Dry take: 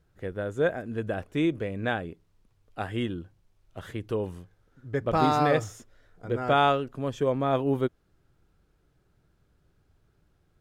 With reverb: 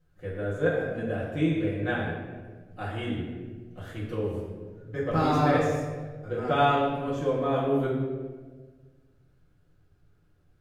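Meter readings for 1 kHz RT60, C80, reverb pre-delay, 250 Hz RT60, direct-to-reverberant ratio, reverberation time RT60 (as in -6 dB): 1.2 s, 3.5 dB, 4 ms, 1.8 s, -8.5 dB, 1.4 s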